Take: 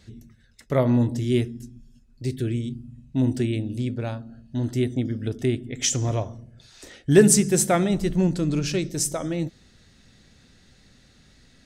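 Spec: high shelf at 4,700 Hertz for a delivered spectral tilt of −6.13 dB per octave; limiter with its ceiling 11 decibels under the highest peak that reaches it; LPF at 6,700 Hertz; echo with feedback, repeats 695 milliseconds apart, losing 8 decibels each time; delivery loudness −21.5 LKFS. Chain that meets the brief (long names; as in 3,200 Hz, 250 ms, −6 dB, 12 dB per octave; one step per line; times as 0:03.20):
low-pass filter 6,700 Hz
high-shelf EQ 4,700 Hz −5 dB
brickwall limiter −16 dBFS
repeating echo 695 ms, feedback 40%, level −8 dB
level +5.5 dB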